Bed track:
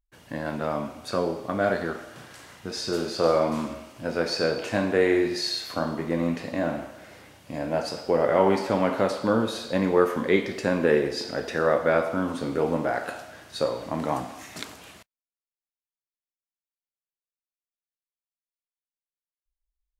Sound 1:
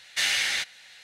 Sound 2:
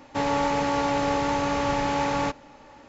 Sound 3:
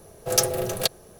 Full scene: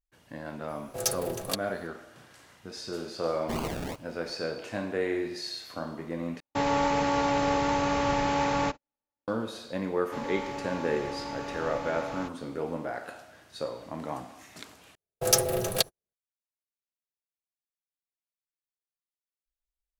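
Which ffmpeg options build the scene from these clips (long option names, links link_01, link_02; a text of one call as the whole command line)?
ffmpeg -i bed.wav -i cue0.wav -i cue1.wav -i cue2.wav -filter_complex "[3:a]asplit=2[link_01][link_02];[2:a]asplit=2[link_03][link_04];[0:a]volume=-8.5dB[link_05];[link_01]equalizer=frequency=8000:width=1.5:gain=2[link_06];[1:a]acrusher=samples=34:mix=1:aa=0.000001:lfo=1:lforange=20.4:lforate=2.6[link_07];[link_03]agate=range=-45dB:threshold=-42dB:ratio=16:release=100:detection=peak[link_08];[link_02]agate=range=-48dB:threshold=-42dB:ratio=16:release=100:detection=peak[link_09];[link_05]asplit=3[link_10][link_11][link_12];[link_10]atrim=end=6.404[link_13];[link_08]atrim=end=2.88,asetpts=PTS-STARTPTS,volume=-1.5dB[link_14];[link_11]atrim=start=9.276:end=14.954[link_15];[link_09]atrim=end=1.19,asetpts=PTS-STARTPTS,volume=-1.5dB[link_16];[link_12]atrim=start=16.136[link_17];[link_06]atrim=end=1.19,asetpts=PTS-STARTPTS,volume=-8.5dB,afade=type=in:duration=0.004:curve=hsin,afade=type=out:start_time=1.186:duration=0.004:curve=hsin,adelay=680[link_18];[link_07]atrim=end=1.03,asetpts=PTS-STARTPTS,volume=-8dB,afade=type=in:duration=0.004:curve=hsin,afade=type=out:start_time=1.026:duration=0.004:curve=hsin,adelay=3320[link_19];[link_04]atrim=end=2.88,asetpts=PTS-STARTPTS,volume=-12.5dB,afade=type=in:duration=0.004:curve=hsin,afade=type=out:start_time=2.876:duration=0.004:curve=hsin,adelay=9970[link_20];[link_13][link_14]acrossfade=duration=0.004:curve1=hsin:curve2=hsin[link_21];[link_21][link_15]acrossfade=duration=0.004:curve1=hsin:curve2=hsin[link_22];[link_22][link_16]acrossfade=duration=0.004:curve1=hsin:curve2=hsin[link_23];[link_23][link_17]acrossfade=duration=0.004:curve1=hsin:curve2=hsin[link_24];[link_24][link_18][link_19][link_20]amix=inputs=4:normalize=0" out.wav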